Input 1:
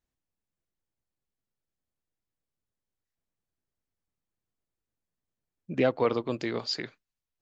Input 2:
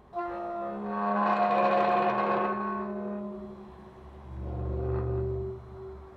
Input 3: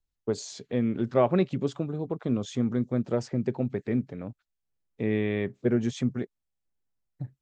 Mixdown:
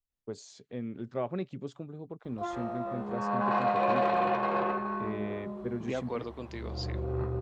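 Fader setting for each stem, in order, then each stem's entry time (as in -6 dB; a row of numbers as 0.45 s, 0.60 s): -10.0 dB, -2.0 dB, -11.0 dB; 0.10 s, 2.25 s, 0.00 s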